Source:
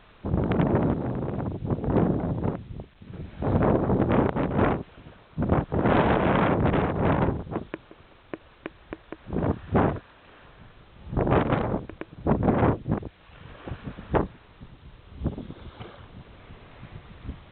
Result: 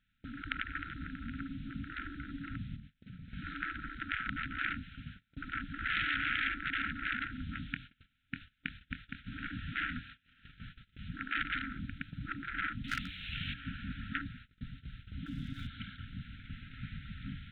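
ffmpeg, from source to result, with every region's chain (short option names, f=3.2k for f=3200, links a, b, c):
-filter_complex "[0:a]asettb=1/sr,asplit=3[a][b][c];[a]atrim=end=2.754[d];[b]atrim=start=2.75:end=3.33,asetpts=PTS-STARTPTS,afade=t=in:d=0.004:c=qsin,afade=t=out:st=0.576:d=0.004:c=qsin,equalizer=f=73:t=o:w=0.42:g=-7.5,bandreject=f=50:t=h:w=6,bandreject=f=100:t=h:w=6,bandreject=f=150:t=h:w=6,bandreject=f=200:t=h:w=6,bandreject=f=250:t=h:w=6,bandreject=f=300:t=h:w=6,bandreject=f=350:t=h:w=6,bandreject=f=400:t=h:w=6,bandreject=f=450:t=h:w=6,acompressor=threshold=-44dB:ratio=16:attack=3.2:release=140:knee=1:detection=peak[e];[c]atrim=start=3.326[f];[d][e]acrossfade=d=0.004:c1=hsin:c2=qsin[g];[g][f]acrossfade=d=0.004:c1=qsin:c2=hsin,asettb=1/sr,asplit=3[h][i][j];[h]atrim=end=7.324[k];[i]atrim=start=7.32:end=11.09,asetpts=PTS-STARTPTS,afade=t=in:d=0.004:c=qsin,afade=t=out:st=3.766:d=0.004:c=qsin,equalizer=f=3k:t=o:w=1.2:g=3.5,asplit=2[l][m];[m]adelay=24,volume=-11dB[n];[l][n]amix=inputs=2:normalize=0,atrim=end_sample=166257[o];[j]atrim=start=11.086[p];[k][o]acrossfade=d=0.004:c1=hsin:c2=qsin[q];[q][p]acrossfade=d=0.004:c1=qsin:c2=hsin,asettb=1/sr,asplit=3[r][s][t];[r]atrim=end=12.844[u];[s]atrim=start=12.84:end=13.54,asetpts=PTS-STARTPTS,afade=t=in:d=0.004:c=qsin,afade=t=out:st=0.696:d=0.004:c=qsin,highshelf=f=2k:t=q:w=1.5:g=6.5,acontrast=56,aeval=exprs='0.0944*(abs(mod(val(0)/0.0944+3,4)-2)-1)':c=same[v];[t]atrim=start=13.536[w];[u][v]acrossfade=d=0.004:c1=hsin:c2=qsin[x];[x][w]acrossfade=d=0.004:c1=qsin:c2=hsin,asettb=1/sr,asplit=3[y][z][aa];[y]atrim=end=15.264[ab];[z]atrim=start=15.26:end=15.67,asetpts=PTS-STARTPTS,afade=t=in:d=0.004:c=qsin,afade=t=out:st=0.406:d=0.004:c=qsin,aecho=1:1:7.3:0.51,atrim=end_sample=18081,acompressor=mode=upward:threshold=-33dB:ratio=2.5:attack=3.2:release=140:knee=2.83:detection=peak,aeval=exprs='sgn(val(0))*max(abs(val(0))-0.00106,0)':c=same[ac];[aa]atrim=start=15.666[ad];[ab][ac]acrossfade=d=0.004:c1=hsin:c2=qsin[ae];[ae][ad]acrossfade=d=0.004:c1=qsin:c2=hsin,afftfilt=real='re*(1-between(b*sr/4096,290,1300))':imag='im*(1-between(b*sr/4096,290,1300))':win_size=4096:overlap=0.75,agate=range=-25dB:threshold=-49dB:ratio=16:detection=peak,afftfilt=real='re*lt(hypot(re,im),0.126)':imag='im*lt(hypot(re,im),0.126)':win_size=1024:overlap=0.75,volume=1.5dB"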